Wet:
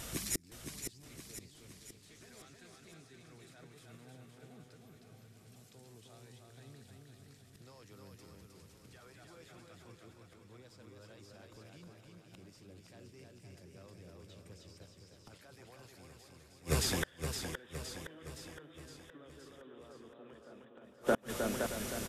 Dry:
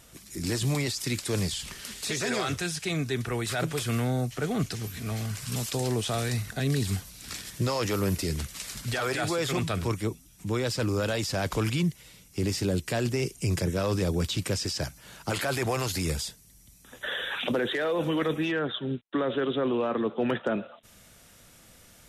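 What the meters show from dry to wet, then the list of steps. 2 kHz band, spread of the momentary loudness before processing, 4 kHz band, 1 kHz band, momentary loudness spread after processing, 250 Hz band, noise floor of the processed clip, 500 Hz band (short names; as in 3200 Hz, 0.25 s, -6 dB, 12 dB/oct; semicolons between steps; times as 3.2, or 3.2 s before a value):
-14.5 dB, 7 LU, -14.0 dB, -14.5 dB, 21 LU, -17.0 dB, -61 dBFS, -14.5 dB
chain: feedback echo 0.311 s, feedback 43%, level -3 dB; flipped gate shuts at -27 dBFS, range -39 dB; warbling echo 0.516 s, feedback 55%, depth 77 cents, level -7 dB; gain +9 dB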